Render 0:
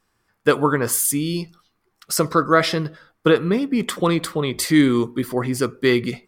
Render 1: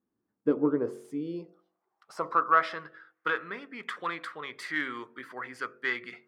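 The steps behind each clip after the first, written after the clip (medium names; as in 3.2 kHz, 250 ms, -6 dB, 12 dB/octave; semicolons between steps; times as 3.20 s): self-modulated delay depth 0.054 ms; band-pass sweep 270 Hz -> 1.6 kHz, 0.39–3.01 s; de-hum 45.59 Hz, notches 16; trim -2 dB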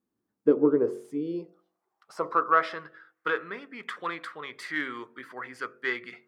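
dynamic bell 410 Hz, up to +7 dB, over -42 dBFS, Q 1.9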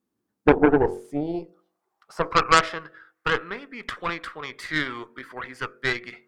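Chebyshev shaper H 4 -7 dB, 6 -7 dB, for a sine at -8.5 dBFS; trim +3 dB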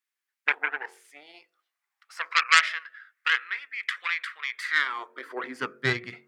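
high-pass sweep 2 kHz -> 110 Hz, 4.50–5.98 s; trim -1 dB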